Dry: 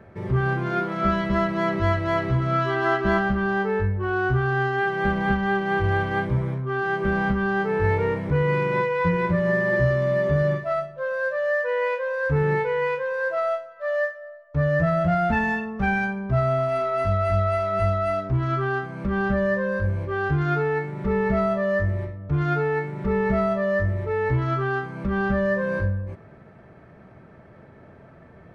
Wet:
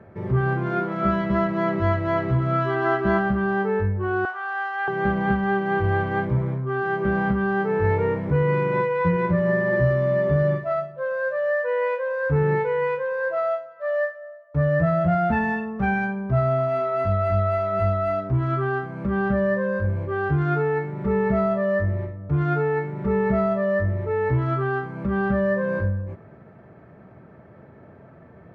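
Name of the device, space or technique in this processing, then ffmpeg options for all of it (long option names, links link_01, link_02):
through cloth: -filter_complex "[0:a]highpass=72,highshelf=frequency=2900:gain=-13,asettb=1/sr,asplit=3[link_01][link_02][link_03];[link_01]atrim=end=4.254[link_04];[link_02]atrim=start=4.25:end=4.88,asetpts=PTS-STARTPTS,afade=type=in:duration=0.004:curve=qsin,afade=type=out:start_time=0.626:duration=0.004:curve=qsin,highpass=frequency=720:width=0.5412,highpass=frequency=720:width=1.3066[link_05];[link_03]atrim=start=4.876[link_06];[link_04][link_05]acrossfade=duration=0.004:curve1=hsin:curve2=qsin[link_07];[link_07][link_06]acrossfade=duration=0.004:curve1=qsin:curve2=hsin,volume=1.5dB"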